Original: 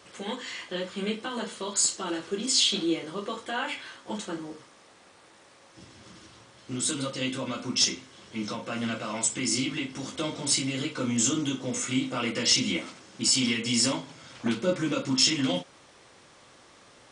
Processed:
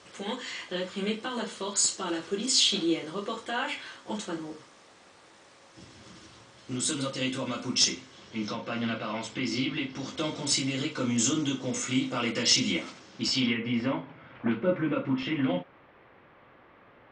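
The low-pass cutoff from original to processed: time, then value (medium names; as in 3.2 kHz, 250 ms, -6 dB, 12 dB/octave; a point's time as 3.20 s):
low-pass 24 dB/octave
7.84 s 8.8 kHz
8.95 s 4.5 kHz
9.75 s 4.5 kHz
10.30 s 7.5 kHz
12.92 s 7.5 kHz
13.40 s 4.5 kHz
13.57 s 2.4 kHz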